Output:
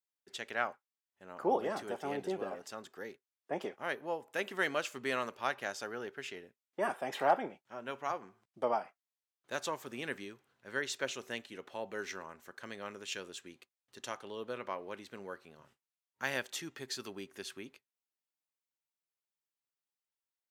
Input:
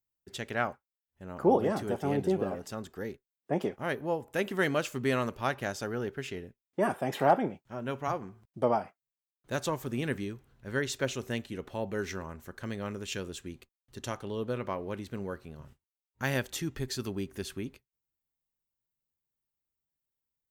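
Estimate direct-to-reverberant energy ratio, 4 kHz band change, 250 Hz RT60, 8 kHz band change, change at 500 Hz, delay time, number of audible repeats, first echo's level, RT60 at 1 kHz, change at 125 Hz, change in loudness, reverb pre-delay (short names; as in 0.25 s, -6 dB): none, -2.0 dB, none, -3.5 dB, -6.5 dB, none, none, none, none, -17.5 dB, -5.5 dB, none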